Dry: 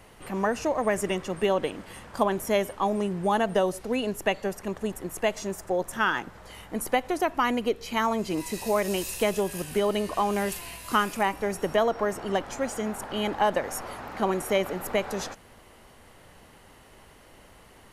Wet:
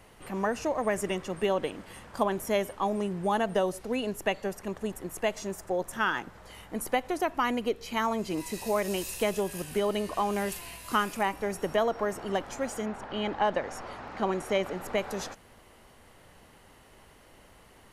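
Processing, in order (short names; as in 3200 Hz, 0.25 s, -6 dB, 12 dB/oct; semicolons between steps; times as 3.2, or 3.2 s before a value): 12.85–14.96 LPF 4000 Hz -> 9300 Hz 12 dB/oct; gain -3 dB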